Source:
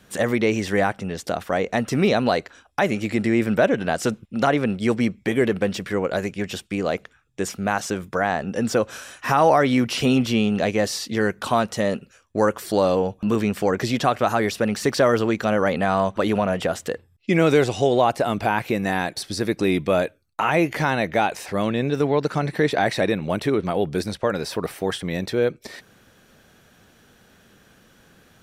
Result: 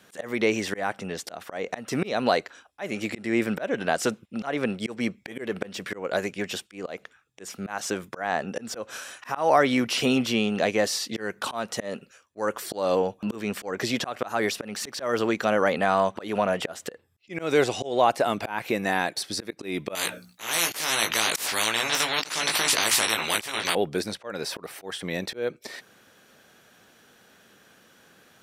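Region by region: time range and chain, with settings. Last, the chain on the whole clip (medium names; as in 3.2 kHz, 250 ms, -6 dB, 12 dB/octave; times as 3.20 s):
19.95–23.75 s: hum notches 60/120/180/240/300 Hz + doubling 18 ms -4 dB + spectrum-flattening compressor 10:1
whole clip: high-pass 350 Hz 6 dB/octave; slow attack 212 ms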